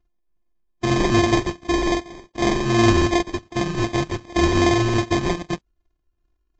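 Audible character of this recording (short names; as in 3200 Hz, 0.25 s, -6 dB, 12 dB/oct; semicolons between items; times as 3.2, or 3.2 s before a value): a buzz of ramps at a fixed pitch in blocks of 128 samples; phasing stages 12, 2.6 Hz, lowest notch 560–2000 Hz; aliases and images of a low sample rate 1400 Hz, jitter 0%; Vorbis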